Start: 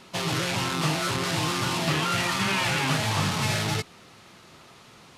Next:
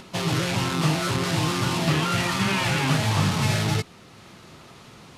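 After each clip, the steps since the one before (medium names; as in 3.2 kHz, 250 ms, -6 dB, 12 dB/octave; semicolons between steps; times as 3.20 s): bass shelf 380 Hz +6 dB; upward compressor, threshold -41 dBFS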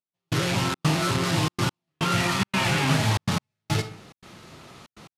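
on a send at -10 dB: reverberation RT60 0.55 s, pre-delay 4 ms; on the sum: trance gate "...xxxx.xxxxxx.x" 142 bpm -60 dB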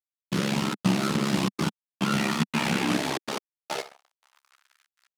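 ring modulator 34 Hz; crossover distortion -42.5 dBFS; high-pass sweep 200 Hz -> 1.5 kHz, 2.63–4.75 s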